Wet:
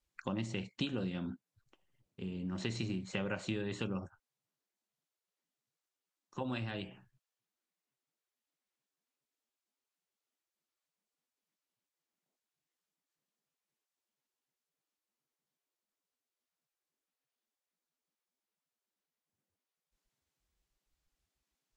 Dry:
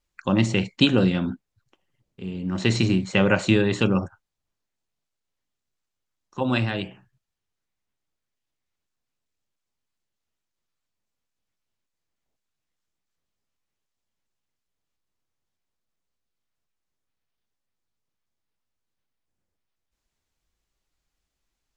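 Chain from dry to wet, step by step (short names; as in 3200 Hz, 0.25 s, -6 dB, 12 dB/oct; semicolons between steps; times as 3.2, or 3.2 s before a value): compressor 3:1, threshold -32 dBFS, peak gain reduction 14.5 dB; gain -5.5 dB; Vorbis 64 kbps 44100 Hz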